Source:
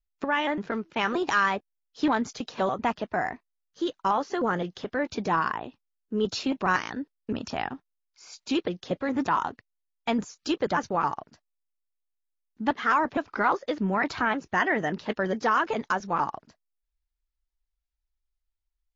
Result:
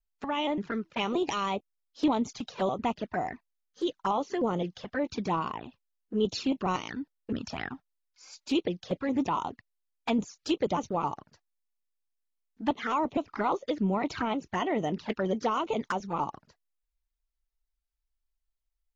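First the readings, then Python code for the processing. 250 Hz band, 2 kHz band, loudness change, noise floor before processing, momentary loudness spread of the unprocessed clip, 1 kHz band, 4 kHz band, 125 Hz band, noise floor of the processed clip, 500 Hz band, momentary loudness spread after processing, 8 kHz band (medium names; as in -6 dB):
-0.5 dB, -10.5 dB, -3.5 dB, -82 dBFS, 10 LU, -5.0 dB, -1.5 dB, -0.5 dB, -83 dBFS, -1.5 dB, 8 LU, no reading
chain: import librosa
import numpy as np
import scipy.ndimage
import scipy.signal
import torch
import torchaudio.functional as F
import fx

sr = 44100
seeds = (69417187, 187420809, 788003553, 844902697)

y = fx.env_flanger(x, sr, rest_ms=4.5, full_db=-23.5)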